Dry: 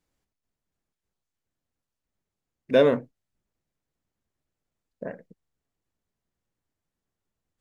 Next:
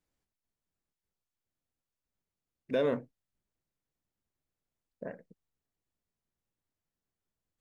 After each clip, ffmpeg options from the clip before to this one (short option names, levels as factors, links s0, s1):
-af "alimiter=limit=0.188:level=0:latency=1:release=64,volume=0.501"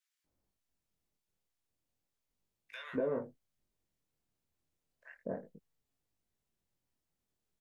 -filter_complex "[0:a]acrossover=split=1400[s0][s1];[s0]adelay=240[s2];[s2][s1]amix=inputs=2:normalize=0,acrossover=split=670|2100[s3][s4][s5];[s3]acompressor=threshold=0.0158:ratio=4[s6];[s4]acompressor=threshold=0.00631:ratio=4[s7];[s5]acompressor=threshold=0.00141:ratio=4[s8];[s6][s7][s8]amix=inputs=3:normalize=0,flanger=delay=18.5:depth=7.9:speed=0.34,volume=1.88"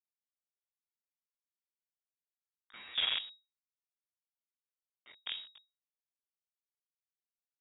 -af "aresample=11025,acrusher=bits=6:dc=4:mix=0:aa=0.000001,aresample=44100,lowpass=f=3200:t=q:w=0.5098,lowpass=f=3200:t=q:w=0.6013,lowpass=f=3200:t=q:w=0.9,lowpass=f=3200:t=q:w=2.563,afreqshift=-3800"